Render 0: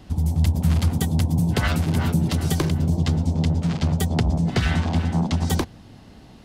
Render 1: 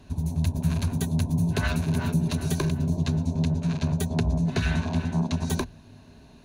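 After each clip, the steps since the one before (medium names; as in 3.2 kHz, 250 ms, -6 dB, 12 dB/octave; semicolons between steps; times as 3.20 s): rippled EQ curve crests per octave 1.5, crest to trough 9 dB; trim -5.5 dB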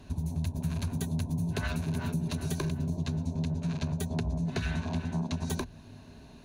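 compression 2.5:1, threshold -31 dBFS, peak gain reduction 8.5 dB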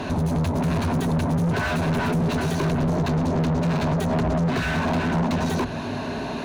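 overdrive pedal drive 36 dB, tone 1.1 kHz, clips at -18.5 dBFS; trim +4 dB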